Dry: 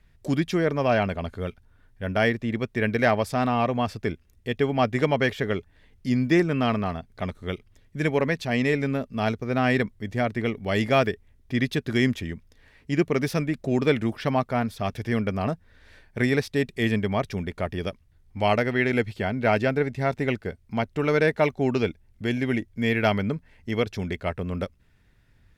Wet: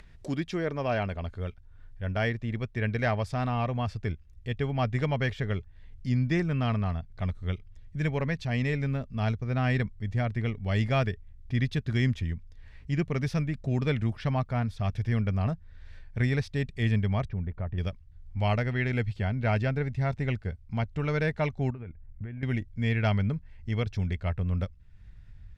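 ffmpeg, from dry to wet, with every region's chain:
ffmpeg -i in.wav -filter_complex "[0:a]asettb=1/sr,asplit=3[link_01][link_02][link_03];[link_01]atrim=end=17.254[link_04];[link_02]atrim=start=17.25:end=17.78,asetpts=PTS-STARTPTS,afade=type=in:duration=0.004:curve=qsin,afade=type=out:start_time=0.526:duration=0.004:curve=qsin,lowpass=1500,acompressor=threshold=-33dB:ratio=1.5:attack=3.2:release=140:knee=1:detection=peak[link_05];[link_03]atrim=start=17.776[link_06];[link_04][link_05]acrossfade=duration=0.004:curve1=hsin:curve2=qsin[link_07];[link_07][link_06]acrossfade=duration=0.004:curve1=qsin:curve2=hsin,asettb=1/sr,asplit=3[link_08][link_09][link_10];[link_08]atrim=end=21.704[link_11];[link_09]atrim=start=21.7:end=22.43,asetpts=PTS-STARTPTS,afade=type=in:duration=0.004:curve=qsin,afade=type=out:start_time=0.726:duration=0.004:curve=qsin,lowpass=frequency=2100:width=0.5412,lowpass=frequency=2100:width=1.3066,acompressor=threshold=-32dB:ratio=10:attack=3.2:release=140:knee=1:detection=peak[link_12];[link_10]atrim=start=22.426[link_13];[link_11][link_12]acrossfade=duration=0.004:curve1=hsin:curve2=qsin[link_14];[link_14][link_13]acrossfade=duration=0.004:curve1=qsin:curve2=hsin,lowpass=7400,asubboost=boost=6.5:cutoff=120,acompressor=mode=upward:threshold=-33dB:ratio=2.5,volume=-6.5dB" out.wav

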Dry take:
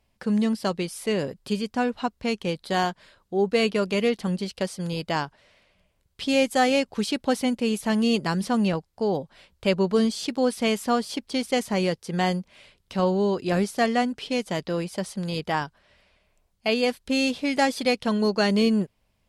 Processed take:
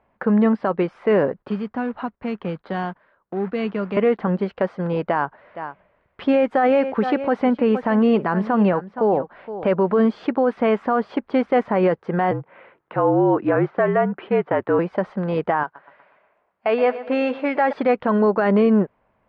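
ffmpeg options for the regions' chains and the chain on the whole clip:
ffmpeg -i in.wav -filter_complex "[0:a]asettb=1/sr,asplit=3[link_01][link_02][link_03];[link_01]atrim=end=1.424[link_04];[link_02]atrim=start=1.42:end=3.97,asetpts=PTS-STARTPTS,afade=type=in:duration=0.004:curve=qsin,afade=type=out:start_time=2.546:duration=0.004:curve=qsin,agate=range=-14dB:threshold=-49dB:ratio=16:release=100:detection=peak,acrossover=split=220|3000[link_05][link_06][link_07];[link_06]acompressor=threshold=-42dB:ratio=3:attack=3.2:release=140:knee=2.83:detection=peak[link_08];[link_05][link_08][link_07]amix=inputs=3:normalize=0,acrusher=bits=4:mode=log:mix=0:aa=0.000001[link_09];[link_03]atrim=start=3.966[link_10];[link_04][link_09]acrossfade=duration=0.004:curve1=hsin:curve2=qsin[link_11];[link_11][link_10]acrossfade=duration=0.004:curve1=qsin:curve2=hsin,asettb=1/sr,asplit=3[link_12][link_13][link_14];[link_12]atrim=end=5.084[link_15];[link_13]atrim=start=5.08:end=9.97,asetpts=PTS-STARTPTS,afade=type=in:duration=0.004:curve=qsin,afade=type=out:start_time=4.886:duration=0.004:curve=qsin,highshelf=frequency=7900:gain=6.5,aecho=1:1:467:0.15,atrim=end_sample=215649[link_16];[link_14]atrim=start=9.966[link_17];[link_15][link_16]acrossfade=duration=0.004:curve1=hsin:curve2=qsin[link_18];[link_18][link_17]acrossfade=duration=0.004:curve1=qsin:curve2=hsin,asettb=1/sr,asplit=3[link_19][link_20][link_21];[link_19]atrim=end=12.314[link_22];[link_20]atrim=start=12.31:end=14.79,asetpts=PTS-STARTPTS,afade=type=in:duration=0.004:curve=qsin,afade=type=out:start_time=2.476:duration=0.004:curve=qsin,highpass=200,lowpass=2800,afreqshift=-50[link_23];[link_21]atrim=start=14.786[link_24];[link_22][link_23]acrossfade=duration=0.004:curve1=hsin:curve2=qsin[link_25];[link_25][link_24]acrossfade=duration=0.004:curve1=qsin:curve2=hsin,asettb=1/sr,asplit=3[link_26][link_27][link_28];[link_26]atrim=end=15.634[link_29];[link_27]atrim=start=15.63:end=17.73,asetpts=PTS-STARTPTS,afade=type=in:duration=0.004:curve=qsin,afade=type=out:start_time=2.096:duration=0.004:curve=qsin,highpass=frequency=500:poles=1,aecho=1:1:121|242|363|484|605:0.158|0.0808|0.0412|0.021|0.0107,atrim=end_sample=92610[link_30];[link_28]atrim=start=17.726[link_31];[link_29][link_30]acrossfade=duration=0.004:curve1=hsin:curve2=qsin[link_32];[link_32][link_31]acrossfade=duration=0.004:curve1=qsin:curve2=hsin,lowpass=frequency=1500:width=0.5412,lowpass=frequency=1500:width=1.3066,aemphasis=mode=production:type=riaa,alimiter=level_in=22dB:limit=-1dB:release=50:level=0:latency=1,volume=-8.5dB" out.wav

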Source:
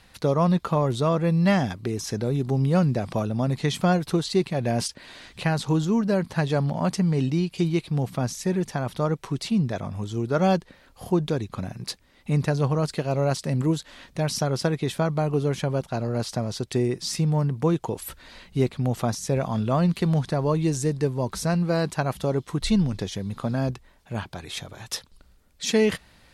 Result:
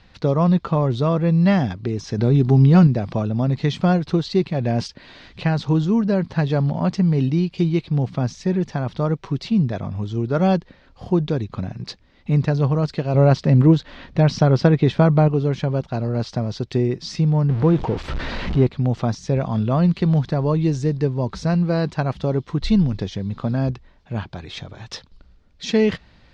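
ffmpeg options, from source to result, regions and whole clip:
ffmpeg -i in.wav -filter_complex "[0:a]asettb=1/sr,asplit=3[link_01][link_02][link_03];[link_01]atrim=end=2.184[link_04];[link_02]atrim=start=2.18:end=2.87,asetpts=PTS-STARTPTS,afade=type=in:duration=0.004:curve=qsin,afade=type=out:start_time=0.686:duration=0.004:curve=qsin,acontrast=27,bandreject=frequency=530:width=5.2[link_05];[link_03]atrim=start=2.866[link_06];[link_04][link_05]acrossfade=duration=0.004:curve1=hsin:curve2=qsin[link_07];[link_07][link_06]acrossfade=duration=0.004:curve1=qsin:curve2=hsin,asettb=1/sr,asplit=3[link_08][link_09][link_10];[link_08]atrim=end=13.144[link_11];[link_09]atrim=start=13.14:end=15.28,asetpts=PTS-STARTPTS,afade=type=in:duration=0.004:curve=qsin,afade=type=out:start_time=2.136:duration=0.004:curve=qsin,lowpass=frequency=3100:poles=1,acontrast=54[link_12];[link_10]atrim=start=15.276[link_13];[link_11][link_12]acrossfade=duration=0.004:curve1=hsin:curve2=qsin[link_14];[link_14][link_13]acrossfade=duration=0.004:curve1=qsin:curve2=hsin,asettb=1/sr,asplit=3[link_15][link_16][link_17];[link_15]atrim=end=17.494[link_18];[link_16]atrim=start=17.49:end=18.67,asetpts=PTS-STARTPTS,afade=type=in:duration=0.004:curve=qsin,afade=type=out:start_time=1.176:duration=0.004:curve=qsin,aeval=exprs='val(0)+0.5*0.0376*sgn(val(0))':channel_layout=same,aemphasis=mode=reproduction:type=75fm,acompressor=mode=upward:threshold=-23dB:ratio=2.5:attack=3.2:release=140:knee=2.83:detection=peak[link_19];[link_17]atrim=start=18.666[link_20];[link_18][link_19]acrossfade=duration=0.004:curve1=hsin:curve2=qsin[link_21];[link_21][link_20]acrossfade=duration=0.004:curve1=qsin:curve2=hsin,lowpass=frequency=5400:width=0.5412,lowpass=frequency=5400:width=1.3066,lowshelf=frequency=350:gain=6" out.wav

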